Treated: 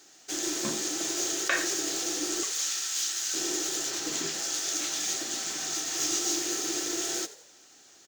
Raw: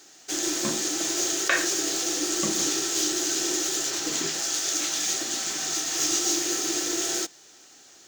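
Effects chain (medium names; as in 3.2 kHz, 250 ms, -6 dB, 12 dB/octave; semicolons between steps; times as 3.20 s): 2.43–3.34 s: high-pass 1.3 kHz 12 dB/octave; frequency-shifting echo 87 ms, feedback 41%, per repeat +68 Hz, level -16.5 dB; trim -4 dB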